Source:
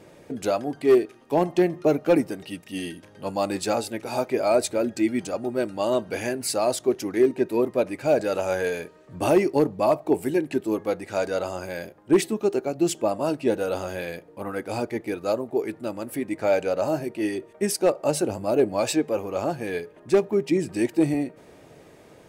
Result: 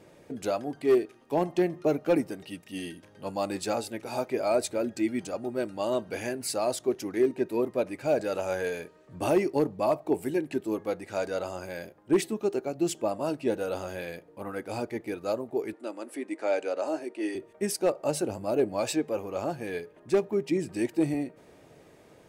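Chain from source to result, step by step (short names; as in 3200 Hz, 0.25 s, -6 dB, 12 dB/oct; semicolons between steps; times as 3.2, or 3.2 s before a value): 15.73–17.35 Chebyshev band-pass 290–9600 Hz, order 3; gain -5 dB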